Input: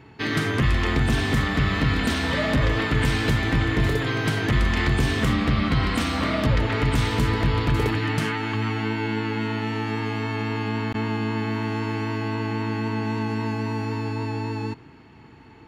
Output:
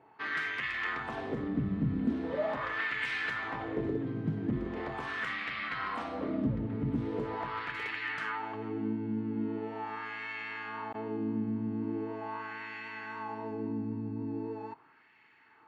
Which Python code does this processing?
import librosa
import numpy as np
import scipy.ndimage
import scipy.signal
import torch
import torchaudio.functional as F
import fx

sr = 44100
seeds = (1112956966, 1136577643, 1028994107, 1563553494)

y = fx.wah_lfo(x, sr, hz=0.41, low_hz=200.0, high_hz=2100.0, q=2.1)
y = y * 10.0 ** (-2.5 / 20.0)